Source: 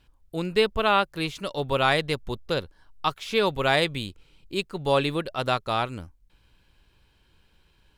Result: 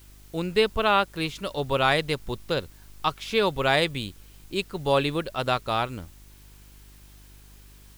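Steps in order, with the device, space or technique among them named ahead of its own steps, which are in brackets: video cassette with head-switching buzz (mains buzz 50 Hz, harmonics 8, -51 dBFS -8 dB/octave; white noise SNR 29 dB)

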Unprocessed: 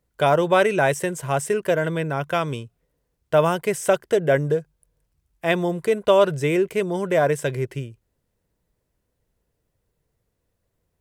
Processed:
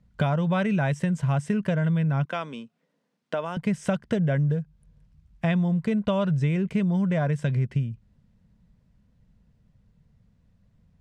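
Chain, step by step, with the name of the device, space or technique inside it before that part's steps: jukebox (low-pass 5 kHz 12 dB/octave; resonant low shelf 270 Hz +9 dB, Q 3; compression 5:1, threshold -26 dBFS, peak gain reduction 14.5 dB); 2.25–3.57 s: high-pass 270 Hz 24 dB/octave; trim +3.5 dB

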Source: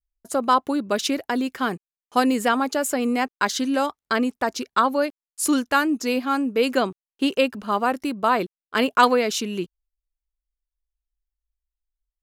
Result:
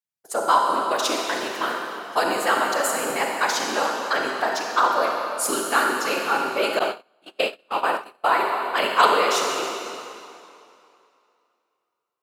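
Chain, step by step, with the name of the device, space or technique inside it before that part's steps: whispering ghost (whisper effect; high-pass 540 Hz 12 dB/octave; reverberation RT60 2.6 s, pre-delay 31 ms, DRR 0 dB); 6.79–8.42 s: gate -22 dBFS, range -34 dB

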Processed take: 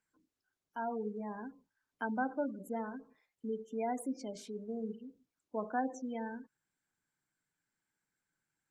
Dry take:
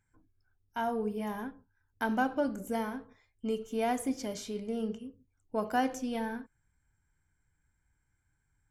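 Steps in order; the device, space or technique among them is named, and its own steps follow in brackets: noise-suppressed video call (high-pass 170 Hz 24 dB/octave; spectral gate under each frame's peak -20 dB strong; trim -5 dB; Opus 32 kbps 48 kHz)

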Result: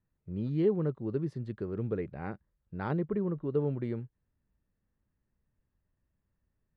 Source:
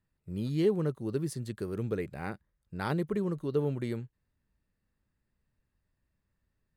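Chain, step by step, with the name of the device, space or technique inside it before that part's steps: 2.99–3.55 s: low-pass 3.1 kHz; phone in a pocket (low-pass 3.7 kHz 12 dB/octave; treble shelf 2.2 kHz -12 dB)

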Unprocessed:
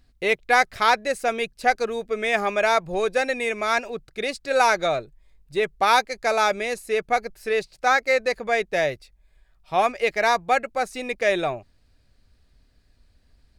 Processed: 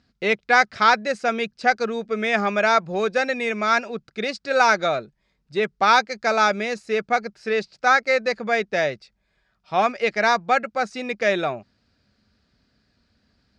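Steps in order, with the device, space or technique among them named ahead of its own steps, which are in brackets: car door speaker (cabinet simulation 100–6600 Hz, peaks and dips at 210 Hz +9 dB, 1.4 kHz +6 dB, 5 kHz +4 dB)

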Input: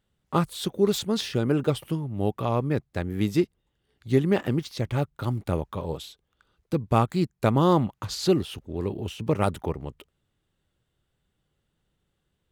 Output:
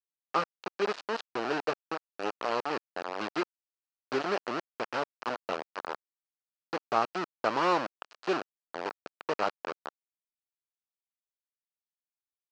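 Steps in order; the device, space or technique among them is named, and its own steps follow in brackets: hand-held game console (bit crusher 4-bit; cabinet simulation 500–4400 Hz, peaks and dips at 1.3 kHz +3 dB, 2.1 kHz -6 dB, 3.5 kHz -10 dB); trim -3 dB

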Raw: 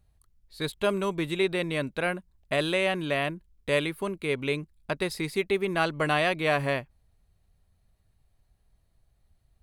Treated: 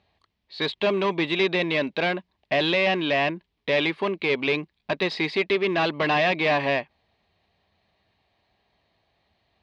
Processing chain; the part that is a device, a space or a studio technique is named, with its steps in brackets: overdrive pedal into a guitar cabinet (overdrive pedal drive 22 dB, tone 6.1 kHz, clips at -11.5 dBFS; cabinet simulation 87–4200 Hz, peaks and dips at 130 Hz -8 dB, 510 Hz -3 dB, 1.4 kHz -10 dB); trim -1 dB

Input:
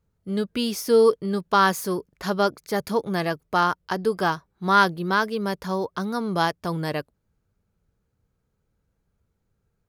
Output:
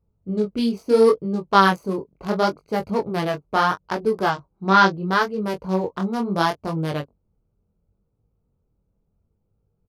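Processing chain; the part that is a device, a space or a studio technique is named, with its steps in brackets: local Wiener filter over 25 samples; 4.29–4.92 s: steep low-pass 8 kHz 48 dB/octave; double-tracked vocal (doubling 21 ms -12 dB; chorus 0.73 Hz, delay 18.5 ms, depth 7.7 ms); trim +5.5 dB

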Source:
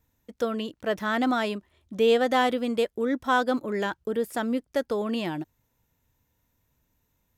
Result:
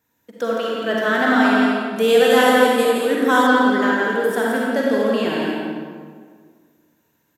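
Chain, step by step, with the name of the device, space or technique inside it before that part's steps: stadium PA (high-pass 200 Hz 12 dB/octave; peaking EQ 1.6 kHz +7.5 dB 0.22 oct; loudspeakers at several distances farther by 58 m -5 dB, 78 m -10 dB; reverberation RT60 1.8 s, pre-delay 37 ms, DRR -3.5 dB); 1.96–3.47 s: peaking EQ 11 kHz +14 dB 0.96 oct; trim +2.5 dB

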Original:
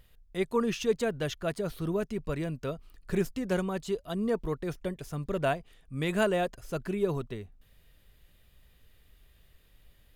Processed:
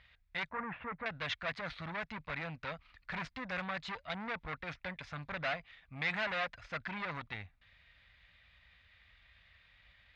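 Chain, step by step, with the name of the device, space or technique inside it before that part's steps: scooped metal amplifier (valve stage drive 35 dB, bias 0.6; cabinet simulation 100–3400 Hz, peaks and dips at 130 Hz -7 dB, 280 Hz +10 dB, 400 Hz -10 dB, 2.1 kHz +5 dB, 3 kHz -7 dB; amplifier tone stack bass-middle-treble 10-0-10); 0.49–1.06 s: low-pass 1.6 kHz 24 dB/octave; trim +14.5 dB

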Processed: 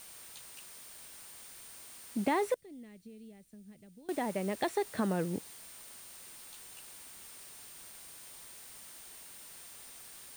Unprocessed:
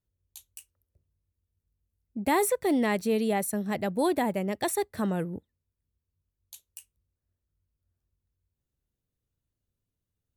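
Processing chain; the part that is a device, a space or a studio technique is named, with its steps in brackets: medium wave at night (band-pass 170–4000 Hz; compression 4:1, threshold -31 dBFS, peak gain reduction 9.5 dB; tremolo 0.38 Hz, depth 36%; whistle 9 kHz -57 dBFS; white noise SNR 15 dB); 2.54–4.09 s: amplifier tone stack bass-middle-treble 10-0-1; trim +3.5 dB

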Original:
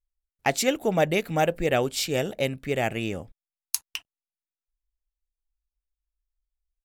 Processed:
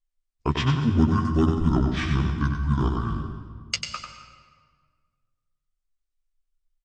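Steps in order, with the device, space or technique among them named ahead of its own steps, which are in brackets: peaking EQ 260 Hz +4 dB 0.25 oct; band-stop 1.7 kHz, Q 9.3; monster voice (pitch shift -11.5 st; formant shift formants -2.5 st; bass shelf 150 Hz +8 dB; delay 95 ms -6 dB; reverberation RT60 1.7 s, pre-delay 118 ms, DRR 8.5 dB); doubling 13 ms -7 dB; trim -3 dB

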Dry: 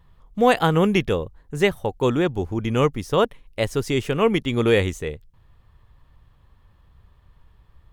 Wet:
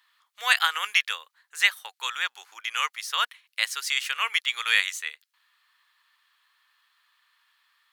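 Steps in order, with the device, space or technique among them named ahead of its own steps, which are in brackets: headphones lying on a table (high-pass 1.4 kHz 24 dB/octave; peaking EQ 4.3 kHz +5 dB 0.27 oct); trim +5 dB

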